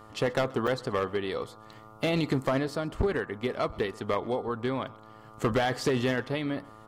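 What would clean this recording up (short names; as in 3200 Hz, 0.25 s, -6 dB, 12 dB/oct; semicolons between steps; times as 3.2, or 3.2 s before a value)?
de-hum 108.7 Hz, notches 13; notch 1200 Hz, Q 30; interpolate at 0.67, 6.1 ms; inverse comb 0.129 s -23 dB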